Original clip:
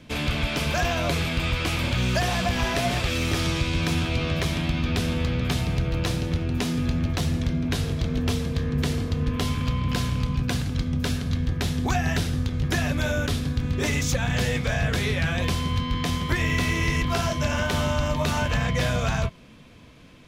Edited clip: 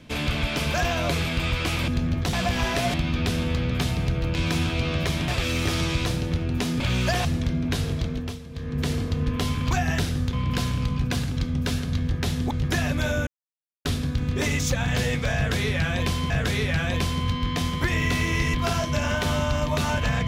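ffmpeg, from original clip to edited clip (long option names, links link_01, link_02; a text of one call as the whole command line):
ffmpeg -i in.wav -filter_complex "[0:a]asplit=16[link_01][link_02][link_03][link_04][link_05][link_06][link_07][link_08][link_09][link_10][link_11][link_12][link_13][link_14][link_15][link_16];[link_01]atrim=end=1.882[link_17];[link_02]atrim=start=6.798:end=7.252[link_18];[link_03]atrim=start=2.328:end=2.942[link_19];[link_04]atrim=start=4.638:end=6.052[link_20];[link_05]atrim=start=3.708:end=4.642[link_21];[link_06]atrim=start=2.938:end=3.712[link_22];[link_07]atrim=start=6.048:end=6.802[link_23];[link_08]atrim=start=1.878:end=2.332[link_24];[link_09]atrim=start=7.248:end=8.39,asetpts=PTS-STARTPTS,afade=type=out:start_time=0.722:duration=0.42:silence=0.223872[link_25];[link_10]atrim=start=8.39:end=8.49,asetpts=PTS-STARTPTS,volume=-13dB[link_26];[link_11]atrim=start=8.49:end=9.712,asetpts=PTS-STARTPTS,afade=type=in:duration=0.42:silence=0.223872[link_27];[link_12]atrim=start=11.888:end=12.512[link_28];[link_13]atrim=start=9.708:end=11.892[link_29];[link_14]atrim=start=12.508:end=13.27,asetpts=PTS-STARTPTS,afade=type=out:start_time=0.758:duration=0.004:curve=hsin,apad=pad_dur=0.58[link_30];[link_15]atrim=start=13.27:end=15.722,asetpts=PTS-STARTPTS,afade=type=in:duration=0.004:curve=hsin[link_31];[link_16]atrim=start=14.778[link_32];[link_17][link_18]acrossfade=duration=0.004:curve1=hsin:curve2=hsin[link_33];[link_33][link_19]acrossfade=duration=0.004:curve1=hsin:curve2=hsin[link_34];[link_34][link_20]acrossfade=duration=0.004:curve1=hsin:curve2=hsin[link_35];[link_35][link_21]acrossfade=duration=0.004:curve1=hsin:curve2=hsin[link_36];[link_36][link_22]acrossfade=duration=0.004:curve1=hsin:curve2=hsin[link_37];[link_37][link_23]acrossfade=duration=0.004:curve1=hsin:curve2=hsin[link_38];[link_38][link_24]acrossfade=duration=0.004:curve1=hsin:curve2=hsin[link_39];[link_25][link_26][link_27]concat=n=3:v=0:a=1[link_40];[link_39][link_40]acrossfade=duration=0.004:curve1=hsin:curve2=hsin[link_41];[link_41][link_28]acrossfade=duration=0.004:curve1=hsin:curve2=hsin[link_42];[link_42][link_29]acrossfade=duration=0.004:curve1=hsin:curve2=hsin[link_43];[link_30][link_31]concat=n=2:v=0:a=1[link_44];[link_43][link_44]acrossfade=duration=0.004:curve1=hsin:curve2=hsin[link_45];[link_45][link_32]acrossfade=duration=0.004:curve1=hsin:curve2=hsin" out.wav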